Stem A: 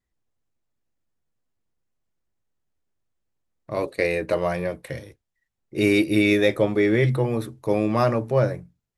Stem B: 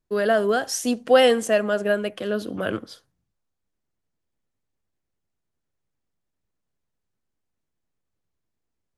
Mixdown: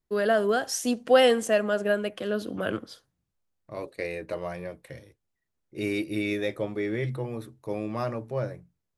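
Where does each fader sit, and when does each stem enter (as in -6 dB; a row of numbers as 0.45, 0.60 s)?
-10.0, -3.0 dB; 0.00, 0.00 s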